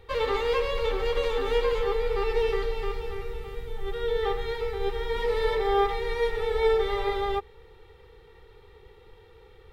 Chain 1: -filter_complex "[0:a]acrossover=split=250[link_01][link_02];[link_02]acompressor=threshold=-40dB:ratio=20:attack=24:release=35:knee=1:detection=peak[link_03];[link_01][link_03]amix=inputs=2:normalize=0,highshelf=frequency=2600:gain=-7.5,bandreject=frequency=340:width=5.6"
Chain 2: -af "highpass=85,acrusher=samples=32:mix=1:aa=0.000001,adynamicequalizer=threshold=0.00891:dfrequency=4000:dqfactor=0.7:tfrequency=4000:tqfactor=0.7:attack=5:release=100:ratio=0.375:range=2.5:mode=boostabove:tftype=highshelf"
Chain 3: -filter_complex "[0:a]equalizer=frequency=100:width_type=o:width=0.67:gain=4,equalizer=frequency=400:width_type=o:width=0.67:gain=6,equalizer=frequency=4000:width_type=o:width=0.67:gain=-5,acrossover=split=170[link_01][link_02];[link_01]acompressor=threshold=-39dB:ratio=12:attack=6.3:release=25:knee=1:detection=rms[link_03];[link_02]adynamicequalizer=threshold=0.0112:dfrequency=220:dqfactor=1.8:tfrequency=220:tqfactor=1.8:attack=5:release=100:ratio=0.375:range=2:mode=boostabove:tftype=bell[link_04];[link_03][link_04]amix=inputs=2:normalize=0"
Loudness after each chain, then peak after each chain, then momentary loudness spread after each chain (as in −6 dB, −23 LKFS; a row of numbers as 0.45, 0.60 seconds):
−36.5, −26.5, −23.5 LKFS; −19.0, −8.5, −9.5 dBFS; 19, 11, 11 LU